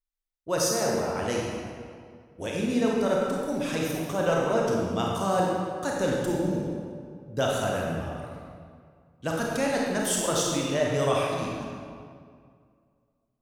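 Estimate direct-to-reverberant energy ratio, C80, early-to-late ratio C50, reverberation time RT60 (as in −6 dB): −3.0 dB, 1.0 dB, −1.0 dB, 2.1 s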